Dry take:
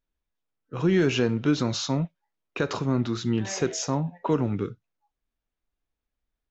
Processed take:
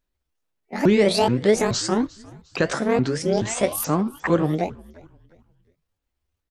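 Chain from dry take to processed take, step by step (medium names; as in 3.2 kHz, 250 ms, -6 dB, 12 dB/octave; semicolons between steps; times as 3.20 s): sawtooth pitch modulation +11.5 st, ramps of 427 ms; frequency-shifting echo 354 ms, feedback 38%, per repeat -94 Hz, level -22.5 dB; trim +5.5 dB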